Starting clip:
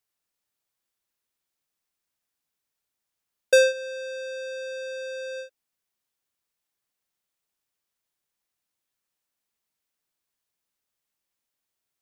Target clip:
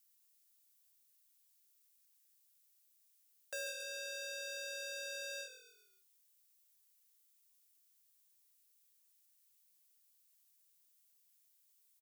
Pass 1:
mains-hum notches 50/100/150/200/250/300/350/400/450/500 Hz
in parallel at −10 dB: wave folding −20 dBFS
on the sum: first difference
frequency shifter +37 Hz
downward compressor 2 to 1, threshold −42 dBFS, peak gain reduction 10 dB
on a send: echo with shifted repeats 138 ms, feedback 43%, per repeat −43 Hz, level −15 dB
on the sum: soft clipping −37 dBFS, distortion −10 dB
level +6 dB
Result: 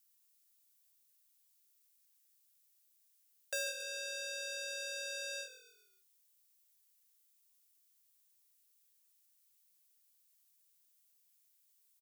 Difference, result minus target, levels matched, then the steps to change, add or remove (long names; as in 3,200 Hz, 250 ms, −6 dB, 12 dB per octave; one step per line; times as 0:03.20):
soft clipping: distortion −4 dB
change: soft clipping −45 dBFS, distortion −6 dB